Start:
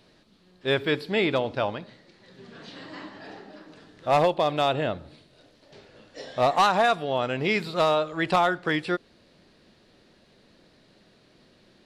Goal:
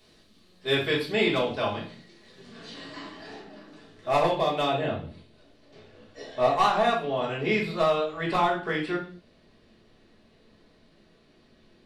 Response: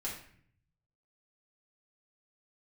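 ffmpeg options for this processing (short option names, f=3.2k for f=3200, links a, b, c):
-filter_complex "[0:a]asetnsamples=n=441:p=0,asendcmd='3.4 highshelf g 3;4.64 highshelf g -3',highshelf=f=4k:g=10.5[a];[1:a]atrim=start_sample=2205,afade=t=out:st=0.4:d=0.01,atrim=end_sample=18081,asetrate=61740,aresample=44100[b];[a][b]afir=irnorm=-1:irlink=0"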